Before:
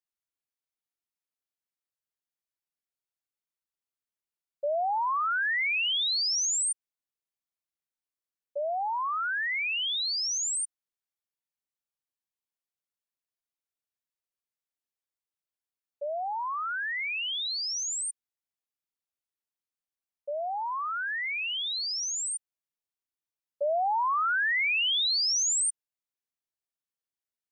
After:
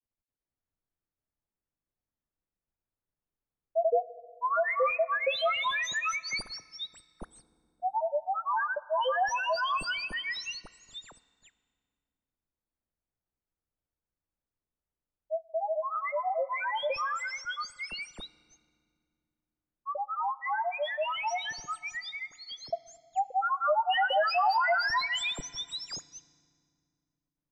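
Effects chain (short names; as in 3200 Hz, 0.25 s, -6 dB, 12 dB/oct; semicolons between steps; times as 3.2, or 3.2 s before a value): median filter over 3 samples; tilt -4 dB/oct; grains, grains 27/s, spray 0.902 s, pitch spread up and down by 3 st; low-pass opened by the level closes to 2200 Hz, open at -31 dBFS; FDN reverb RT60 2.1 s, low-frequency decay 1.55×, high-frequency decay 0.8×, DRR 17.5 dB; gain +4.5 dB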